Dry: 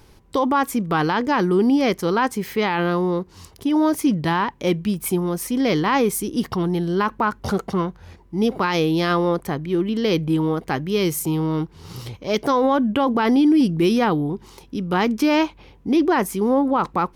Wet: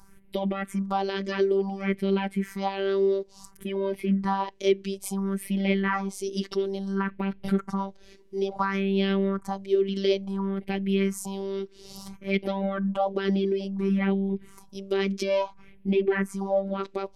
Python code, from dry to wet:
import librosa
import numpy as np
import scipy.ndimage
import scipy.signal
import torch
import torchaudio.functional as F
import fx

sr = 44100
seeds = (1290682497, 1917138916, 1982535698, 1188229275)

y = fx.env_lowpass_down(x, sr, base_hz=2700.0, full_db=-14.0)
y = fx.phaser_stages(y, sr, stages=4, low_hz=140.0, high_hz=1200.0, hz=0.58, feedback_pct=40)
y = fx.robotise(y, sr, hz=195.0)